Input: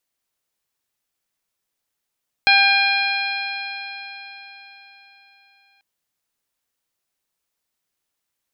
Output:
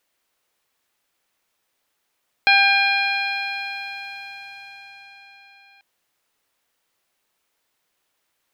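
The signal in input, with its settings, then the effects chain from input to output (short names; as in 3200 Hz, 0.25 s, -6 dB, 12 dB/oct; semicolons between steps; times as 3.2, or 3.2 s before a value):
stretched partials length 3.34 s, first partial 791 Hz, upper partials 1/5/-5/0.5/-11 dB, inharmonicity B 0.0039, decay 4.21 s, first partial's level -18 dB
G.711 law mismatch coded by mu; tone controls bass -7 dB, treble -6 dB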